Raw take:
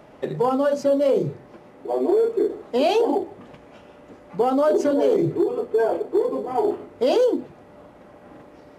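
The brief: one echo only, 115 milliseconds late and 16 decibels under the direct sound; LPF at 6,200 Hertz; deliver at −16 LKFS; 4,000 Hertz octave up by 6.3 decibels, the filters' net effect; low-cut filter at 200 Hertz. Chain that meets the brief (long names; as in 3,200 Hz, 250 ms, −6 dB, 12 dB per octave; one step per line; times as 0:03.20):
high-pass filter 200 Hz
low-pass filter 6,200 Hz
parametric band 4,000 Hz +9 dB
single-tap delay 115 ms −16 dB
level +5.5 dB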